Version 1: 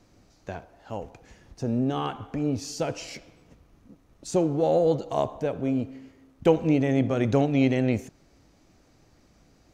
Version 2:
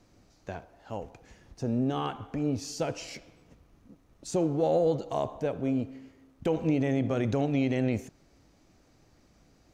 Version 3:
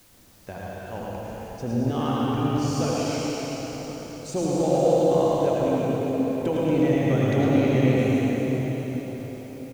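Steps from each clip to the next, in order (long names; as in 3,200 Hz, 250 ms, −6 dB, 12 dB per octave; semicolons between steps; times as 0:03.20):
brickwall limiter −14.5 dBFS, peak gain reduction 7.5 dB; level −2.5 dB
single-tap delay 109 ms −4.5 dB; convolution reverb RT60 5.0 s, pre-delay 68 ms, DRR −5.5 dB; background noise white −57 dBFS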